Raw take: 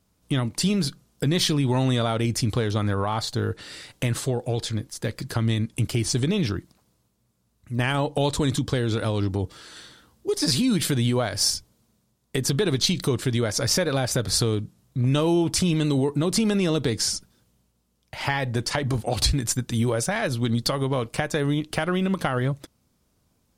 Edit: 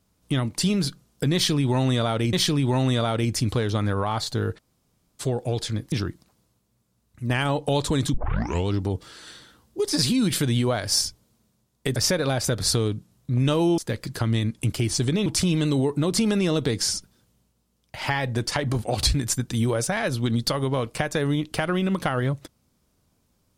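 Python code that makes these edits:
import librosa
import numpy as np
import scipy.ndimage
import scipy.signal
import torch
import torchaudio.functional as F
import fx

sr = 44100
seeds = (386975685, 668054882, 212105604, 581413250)

y = fx.edit(x, sr, fx.repeat(start_s=1.34, length_s=0.99, count=2),
    fx.room_tone_fill(start_s=3.59, length_s=0.62, crossfade_s=0.02),
    fx.move(start_s=4.93, length_s=1.48, to_s=15.45),
    fx.tape_start(start_s=8.63, length_s=0.55),
    fx.cut(start_s=12.45, length_s=1.18), tone=tone)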